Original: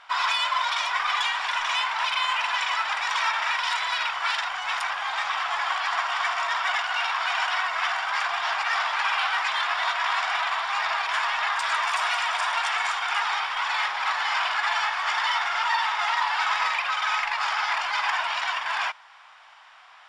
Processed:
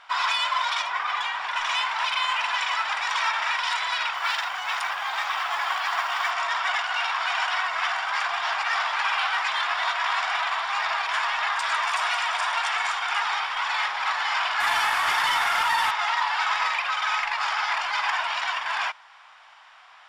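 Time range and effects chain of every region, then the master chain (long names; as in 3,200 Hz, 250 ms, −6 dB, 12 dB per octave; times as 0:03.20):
0:00.82–0:01.56: high-pass filter 70 Hz 24 dB per octave + high-shelf EQ 3,000 Hz −9.5 dB
0:04.13–0:06.31: high-pass filter 120 Hz + noise that follows the level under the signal 29 dB
0:14.60–0:15.91: variable-slope delta modulation 64 kbit/s + envelope flattener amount 70%
whole clip: no processing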